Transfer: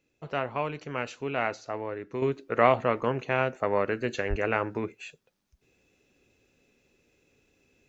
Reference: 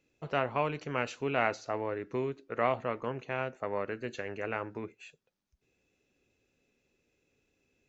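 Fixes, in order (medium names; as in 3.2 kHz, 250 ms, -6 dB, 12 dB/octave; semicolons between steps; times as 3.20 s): de-plosive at 4.29 s; gain correction -8 dB, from 2.22 s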